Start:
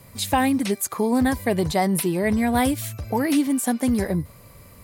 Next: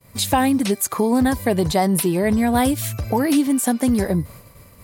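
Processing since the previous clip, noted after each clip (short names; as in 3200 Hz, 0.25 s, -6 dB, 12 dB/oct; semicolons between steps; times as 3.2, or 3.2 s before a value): expander -40 dBFS; dynamic EQ 2100 Hz, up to -4 dB, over -40 dBFS, Q 2.7; in parallel at +2 dB: compressor, threshold -28 dBFS, peak gain reduction 12 dB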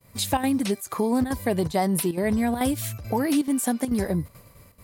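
chopper 2.3 Hz, depth 65%, duty 85%; gain -5 dB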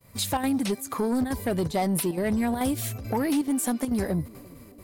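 narrowing echo 0.344 s, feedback 71%, band-pass 370 Hz, level -23 dB; soft clip -18.5 dBFS, distortion -16 dB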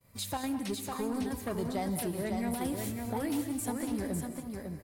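on a send: echo 0.552 s -5 dB; on the sum: non-linear reverb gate 0.24 s rising, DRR 8.5 dB; gain -9 dB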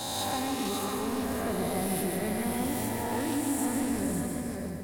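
spectral swells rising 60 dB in 2.08 s; soft clip -26 dBFS, distortion -17 dB; lo-fi delay 0.147 s, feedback 55%, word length 10-bit, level -4 dB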